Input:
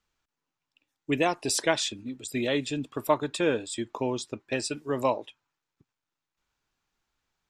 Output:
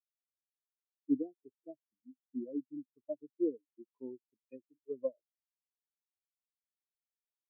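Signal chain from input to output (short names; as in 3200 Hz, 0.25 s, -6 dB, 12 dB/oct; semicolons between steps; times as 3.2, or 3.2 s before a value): pre-emphasis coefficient 0.9; treble ducked by the level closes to 470 Hz, closed at -36.5 dBFS; low shelf 460 Hz +7 dB; spectral expander 4:1; gain +7.5 dB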